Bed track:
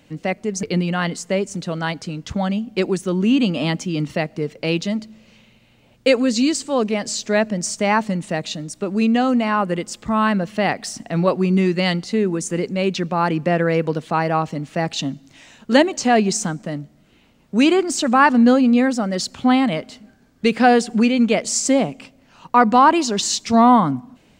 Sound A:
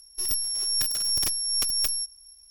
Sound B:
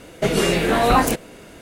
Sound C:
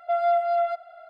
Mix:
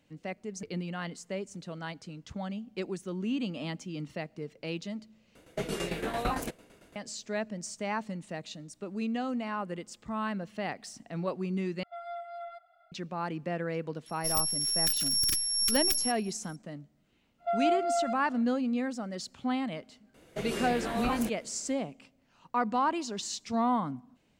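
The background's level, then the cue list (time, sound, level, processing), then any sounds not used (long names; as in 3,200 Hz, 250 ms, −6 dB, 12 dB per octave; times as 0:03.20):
bed track −15.5 dB
0:05.35: overwrite with B −12 dB + shaped tremolo saw down 8.9 Hz, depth 70%
0:11.83: overwrite with C −15.5 dB + comb filter 0.9 ms, depth 57%
0:14.06: mix in A −1.5 dB + Chebyshev band-stop filter 320–1,500 Hz
0:17.38: mix in C −6 dB, fades 0.10 s
0:20.14: mix in B −16 dB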